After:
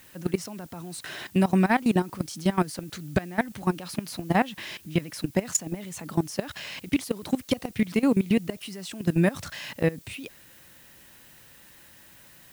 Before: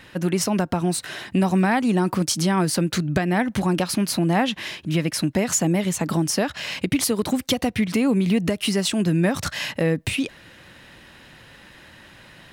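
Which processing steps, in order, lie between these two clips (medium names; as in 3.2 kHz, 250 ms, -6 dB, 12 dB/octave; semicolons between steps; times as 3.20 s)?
level held to a coarse grid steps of 19 dB; added noise blue -54 dBFS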